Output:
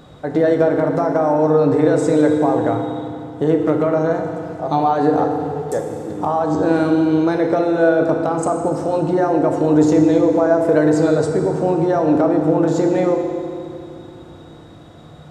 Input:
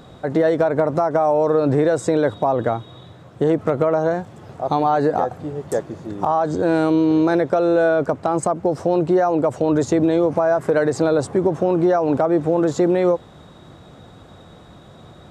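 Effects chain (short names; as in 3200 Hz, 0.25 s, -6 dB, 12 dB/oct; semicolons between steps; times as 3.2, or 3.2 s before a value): FDN reverb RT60 2.5 s, low-frequency decay 1.3×, high-frequency decay 0.8×, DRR 2.5 dB; gain -1 dB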